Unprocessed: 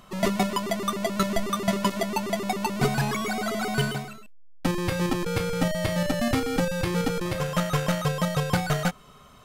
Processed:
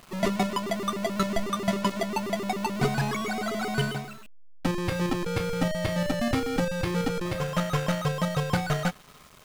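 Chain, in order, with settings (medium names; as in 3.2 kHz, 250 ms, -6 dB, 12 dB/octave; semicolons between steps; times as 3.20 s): treble shelf 9.4 kHz -8 dB; bit crusher 8-bit; trim -1.5 dB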